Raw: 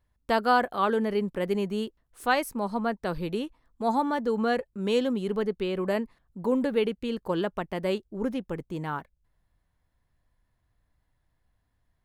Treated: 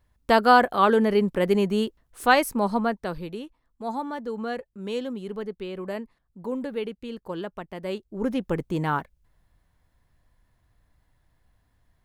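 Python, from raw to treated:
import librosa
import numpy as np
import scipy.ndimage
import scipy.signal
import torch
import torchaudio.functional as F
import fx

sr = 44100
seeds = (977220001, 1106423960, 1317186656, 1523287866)

y = fx.gain(x, sr, db=fx.line((2.71, 6.0), (3.35, -5.0), (7.8, -5.0), (8.51, 7.0)))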